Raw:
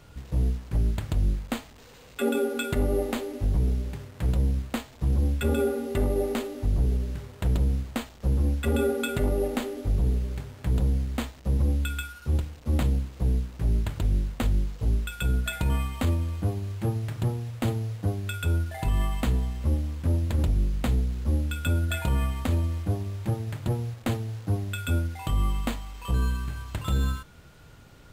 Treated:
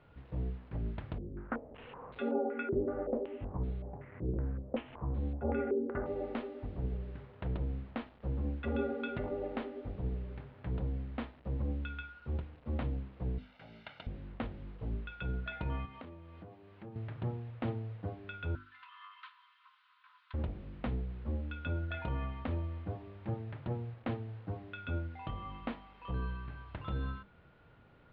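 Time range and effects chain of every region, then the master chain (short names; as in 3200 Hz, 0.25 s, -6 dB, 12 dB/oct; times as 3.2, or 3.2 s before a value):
1.18–6.06 upward compressor, threshold -33 dBFS + air absorption 300 m + stepped low-pass 5.3 Hz 380–4100 Hz
13.38–14.07 HPF 240 Hz + tilt shelf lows -9 dB, about 1500 Hz + comb 1.4 ms, depth 62%
15.85–16.96 HPF 130 Hz + compressor 4:1, threshold -37 dBFS
18.55–20.34 minimum comb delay 3.9 ms + rippled Chebyshev high-pass 980 Hz, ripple 6 dB
whole clip: Bessel low-pass 2100 Hz, order 8; low shelf 94 Hz -8.5 dB; notches 50/100/150/200/250/300/350/400 Hz; gain -6.5 dB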